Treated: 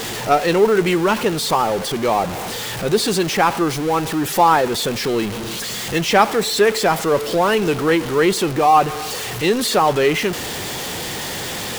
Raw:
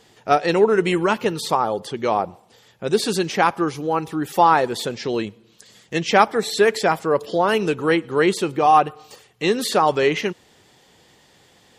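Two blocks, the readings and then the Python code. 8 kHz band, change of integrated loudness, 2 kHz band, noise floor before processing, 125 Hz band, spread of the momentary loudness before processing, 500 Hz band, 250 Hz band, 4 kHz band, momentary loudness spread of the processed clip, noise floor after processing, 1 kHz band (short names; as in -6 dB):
+8.5 dB, +2.0 dB, +2.5 dB, -55 dBFS, +4.5 dB, 9 LU, +2.0 dB, +3.0 dB, +6.0 dB, 10 LU, -27 dBFS, +1.5 dB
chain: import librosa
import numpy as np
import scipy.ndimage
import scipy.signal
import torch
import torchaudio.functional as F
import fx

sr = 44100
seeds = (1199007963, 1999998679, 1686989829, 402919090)

y = x + 0.5 * 10.0 ** (-21.0 / 20.0) * np.sign(x)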